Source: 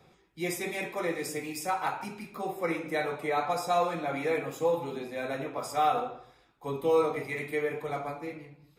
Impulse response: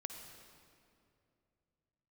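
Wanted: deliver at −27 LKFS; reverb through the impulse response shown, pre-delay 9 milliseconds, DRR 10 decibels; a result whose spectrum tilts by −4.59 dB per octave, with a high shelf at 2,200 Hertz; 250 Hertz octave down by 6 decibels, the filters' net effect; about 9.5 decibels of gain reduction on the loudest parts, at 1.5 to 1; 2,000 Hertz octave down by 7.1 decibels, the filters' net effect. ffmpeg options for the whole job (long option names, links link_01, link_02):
-filter_complex "[0:a]equalizer=frequency=250:width_type=o:gain=-9,equalizer=frequency=2000:width_type=o:gain=-6,highshelf=frequency=2200:gain=-4.5,acompressor=threshold=-51dB:ratio=1.5,asplit=2[link_01][link_02];[1:a]atrim=start_sample=2205,adelay=9[link_03];[link_02][link_03]afir=irnorm=-1:irlink=0,volume=-7.5dB[link_04];[link_01][link_04]amix=inputs=2:normalize=0,volume=15dB"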